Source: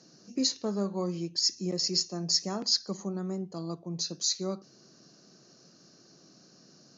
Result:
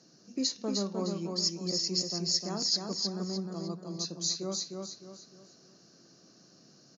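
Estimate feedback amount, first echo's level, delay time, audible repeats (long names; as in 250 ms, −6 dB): 35%, −4.0 dB, 306 ms, 4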